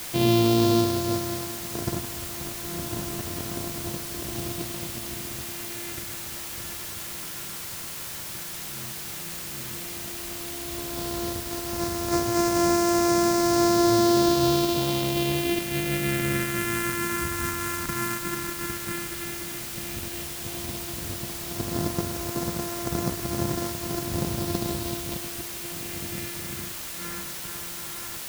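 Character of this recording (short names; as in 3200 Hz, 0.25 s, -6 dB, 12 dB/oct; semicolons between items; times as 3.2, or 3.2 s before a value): a buzz of ramps at a fixed pitch in blocks of 128 samples; phasing stages 4, 0.098 Hz, lowest notch 620–3000 Hz; a quantiser's noise floor 6-bit, dither triangular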